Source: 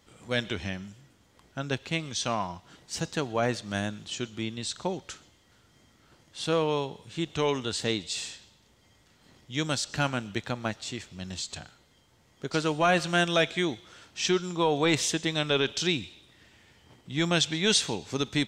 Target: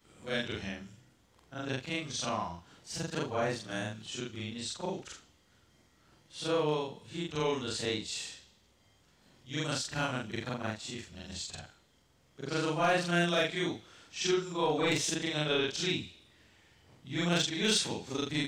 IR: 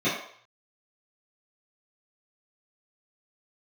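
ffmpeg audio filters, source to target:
-af "afftfilt=real='re':imag='-im':win_size=4096:overlap=0.75,asoftclip=type=hard:threshold=-19.5dB"

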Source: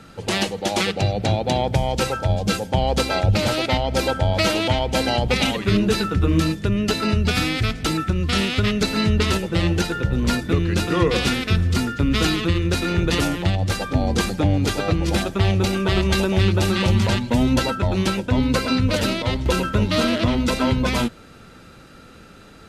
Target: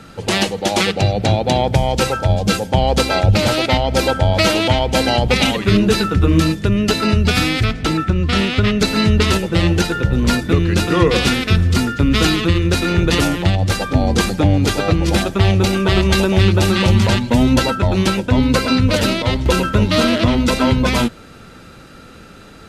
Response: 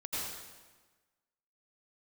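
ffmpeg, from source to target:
-filter_complex "[0:a]asettb=1/sr,asplit=3[link_01][link_02][link_03];[link_01]atrim=end=7.644[link_04];[link_02]atrim=start=7.64:end=8.8,asetpts=PTS-STARTPTS,afade=type=in:duration=0.004:curve=qsin,afade=type=out:start_time=1.156:duration=0.004:curve=qsin,highshelf=frequency=5800:gain=-10.5[link_05];[link_03]atrim=start=8.796[link_06];[link_04][link_05]acrossfade=duration=0.004:curve1=hsin:curve2=qsin[link_07];[link_07][link_06]acrossfade=duration=0.004:curve1=qsin:curve2=hsin,volume=5dB"

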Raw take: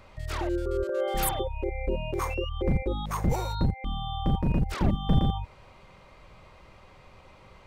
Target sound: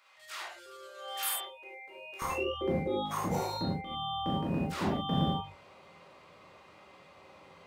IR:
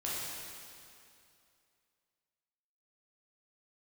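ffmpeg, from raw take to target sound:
-filter_complex "[0:a]asetnsamples=nb_out_samples=441:pad=0,asendcmd='2.22 highpass f 190',highpass=1400[link_01];[1:a]atrim=start_sample=2205,afade=type=out:start_time=0.16:duration=0.01,atrim=end_sample=7497[link_02];[link_01][link_02]afir=irnorm=-1:irlink=0,volume=-2.5dB"

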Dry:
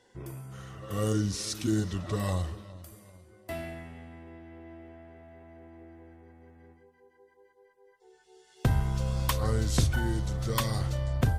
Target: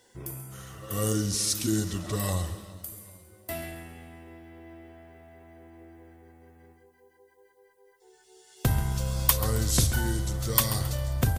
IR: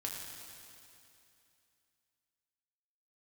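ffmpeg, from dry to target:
-filter_complex "[0:a]aemphasis=mode=production:type=50fm,aecho=1:1:135|270|405|540:0.2|0.0818|0.0335|0.0138,asplit=2[link_01][link_02];[1:a]atrim=start_sample=2205[link_03];[link_02][link_03]afir=irnorm=-1:irlink=0,volume=-19.5dB[link_04];[link_01][link_04]amix=inputs=2:normalize=0"

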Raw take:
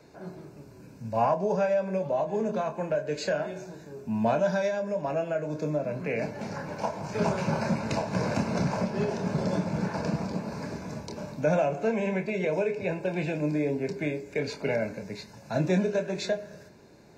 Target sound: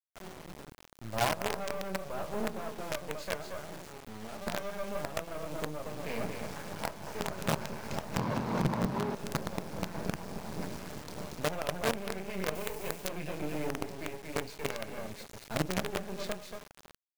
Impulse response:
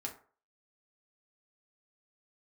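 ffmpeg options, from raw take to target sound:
-filter_complex "[0:a]aecho=1:1:232:0.531,aphaser=in_gain=1:out_gain=1:delay=2.6:decay=0.28:speed=1.6:type=sinusoidal,asettb=1/sr,asplit=3[link_01][link_02][link_03];[link_01]atrim=end=3.884[link_04];[link_02]atrim=start=3.88:end=4.47,asetpts=PTS-STARTPTS,afade=type=in:duration=0.004:curve=qsin,afade=type=out:start_time=0.586:duration=0.004:curve=qsin,acompressor=threshold=-40dB:ratio=3[link_05];[link_03]atrim=start=4.466[link_06];[link_04][link_05]acrossfade=duration=0.004:curve1=hsin:curve2=qsin[link_07];[link_07][link_06]acrossfade=duration=0.004:curve1=qsin:curve2=hsin,acrusher=bits=4:dc=4:mix=0:aa=0.000001,asettb=1/sr,asplit=3[link_08][link_09][link_10];[link_08]atrim=end=8.184[link_11];[link_09]atrim=start=8.18:end=9.15,asetpts=PTS-STARTPTS,afade=type=in:duration=0.004:curve=qsin,afade=type=out:start_time=0.966:duration=0.004:curve=qsin,equalizer=frequency=125:width_type=o:width=1:gain=11,equalizer=frequency=250:width_type=o:width=1:gain=11,equalizer=frequency=500:width_type=o:width=1:gain=5,equalizer=frequency=1000:width_type=o:width=1:gain=11,equalizer=frequency=2000:width_type=o:width=1:gain=4,equalizer=frequency=4000:width_type=o:width=1:gain=5[link_12];[link_10]atrim=start=9.146[link_13];[link_11][link_12]acrossfade=duration=0.004:curve1=hsin:curve2=qsin[link_14];[link_14][link_13]acrossfade=duration=0.004:curve1=qsin:curve2=hsin,aeval=exprs='(tanh(3.55*val(0)+0.55)-tanh(0.55))/3.55':channel_layout=same,alimiter=limit=-18dB:level=0:latency=1:release=458,asettb=1/sr,asplit=3[link_15][link_16][link_17];[link_15]atrim=end=12.554[link_18];[link_16]atrim=start=12.55:end=13.07,asetpts=PTS-STARTPTS,afade=type=in:duration=0.004:curve=qsin,afade=type=out:start_time=0.516:duration=0.004:curve=qsin,highshelf=frequency=6500:gain=11.5[link_19];[link_17]atrim=start=13.066[link_20];[link_18][link_19]acrossfade=duration=0.004:curve1=hsin:curve2=qsin[link_21];[link_21][link_20]acrossfade=duration=0.004:curve1=qsin:curve2=hsin"

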